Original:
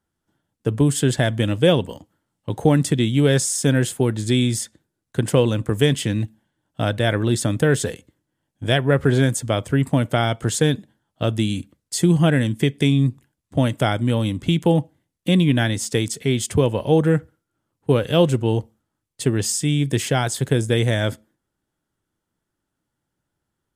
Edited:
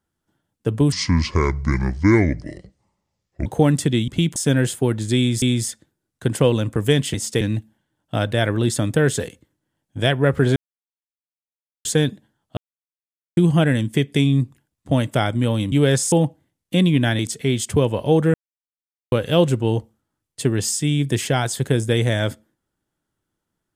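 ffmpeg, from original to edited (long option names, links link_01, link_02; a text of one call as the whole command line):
ffmpeg -i in.wav -filter_complex "[0:a]asplit=17[link_01][link_02][link_03][link_04][link_05][link_06][link_07][link_08][link_09][link_10][link_11][link_12][link_13][link_14][link_15][link_16][link_17];[link_01]atrim=end=0.924[link_18];[link_02]atrim=start=0.92:end=2.52,asetpts=PTS-STARTPTS,asetrate=27783,aresample=44100[link_19];[link_03]atrim=start=2.516:end=3.142[link_20];[link_04]atrim=start=14.378:end=14.662[link_21];[link_05]atrim=start=3.538:end=4.602[link_22];[link_06]atrim=start=4.348:end=6.072[link_23];[link_07]atrim=start=15.728:end=16.002[link_24];[link_08]atrim=start=6.068:end=9.22,asetpts=PTS-STARTPTS,afade=type=out:start_time=3.148:duration=0.004:curve=hsin[link_25];[link_09]atrim=start=9.22:end=10.51,asetpts=PTS-STARTPTS,volume=0[link_26];[link_10]atrim=start=10.51:end=11.23,asetpts=PTS-STARTPTS,afade=type=in:duration=0.004:curve=hsin,afade=type=out:start_time=0.716:duration=0.004:curve=hsin[link_27];[link_11]atrim=start=11.23:end=12.03,asetpts=PTS-STARTPTS,volume=0[link_28];[link_12]atrim=start=12.03:end=14.382,asetpts=PTS-STARTPTS,afade=type=in:duration=0.004:curve=hsin[link_29];[link_13]atrim=start=3.138:end=3.542[link_30];[link_14]atrim=start=14.658:end=15.732[link_31];[link_15]atrim=start=15.998:end=17.15,asetpts=PTS-STARTPTS,afade=type=out:start_time=1.148:duration=0.004:curve=hsin[link_32];[link_16]atrim=start=17.15:end=17.93,asetpts=PTS-STARTPTS,volume=0[link_33];[link_17]atrim=start=17.93,asetpts=PTS-STARTPTS,afade=type=in:duration=0.004:curve=hsin[link_34];[link_18][link_19]acrossfade=duration=0.004:curve1=hsin:curve2=hsin[link_35];[link_35][link_20]acrossfade=duration=0.004:curve1=hsin:curve2=hsin[link_36];[link_36][link_21]acrossfade=duration=0.004:curve1=hsin:curve2=hsin[link_37];[link_37][link_22]acrossfade=duration=0.004:curve1=hsin:curve2=hsin[link_38];[link_38][link_23]acrossfade=duration=0.004:curve1=hsin:curve2=hsin[link_39];[link_39][link_24]acrossfade=duration=0.004:curve1=hsin:curve2=hsin[link_40];[link_25][link_26][link_27][link_28][link_29]concat=n=5:v=0:a=1[link_41];[link_40][link_41]acrossfade=duration=0.004:curve1=hsin:curve2=hsin[link_42];[link_42][link_30]acrossfade=duration=0.004:curve1=hsin:curve2=hsin[link_43];[link_43][link_31]acrossfade=duration=0.004:curve1=hsin:curve2=hsin[link_44];[link_32][link_33][link_34]concat=n=3:v=0:a=1[link_45];[link_44][link_45]acrossfade=duration=0.004:curve1=hsin:curve2=hsin" out.wav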